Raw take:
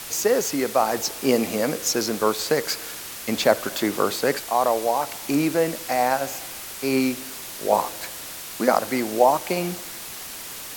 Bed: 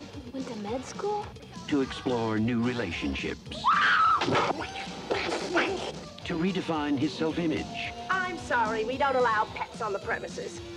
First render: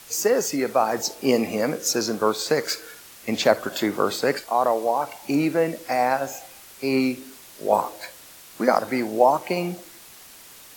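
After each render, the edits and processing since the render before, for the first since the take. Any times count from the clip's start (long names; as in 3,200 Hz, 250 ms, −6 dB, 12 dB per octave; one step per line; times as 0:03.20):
noise reduction from a noise print 10 dB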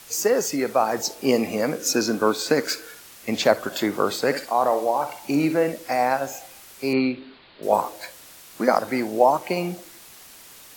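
0:01.79–0:02.82: hollow resonant body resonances 270/1,500/2,500 Hz, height 9 dB
0:04.24–0:05.72: flutter between parallel walls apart 10.9 metres, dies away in 0.35 s
0:06.93–0:07.63: Butterworth low-pass 4,500 Hz 96 dB per octave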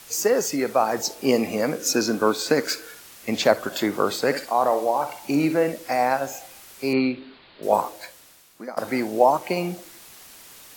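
0:07.78–0:08.77: fade out, to −21 dB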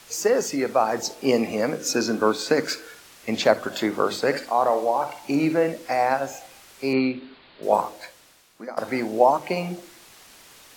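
high-shelf EQ 10,000 Hz −11 dB
mains-hum notches 50/100/150/200/250/300/350 Hz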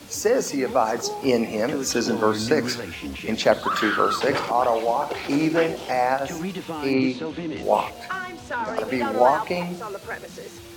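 mix in bed −2 dB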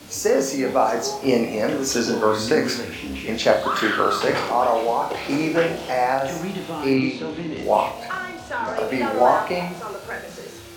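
flutter between parallel walls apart 5.1 metres, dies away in 0.35 s
spring reverb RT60 3 s, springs 37 ms, chirp 25 ms, DRR 17.5 dB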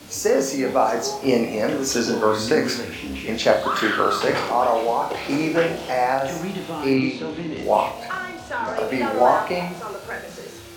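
no processing that can be heard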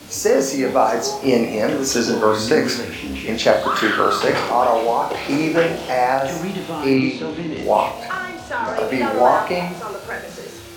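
level +3 dB
brickwall limiter −3 dBFS, peak gain reduction 2 dB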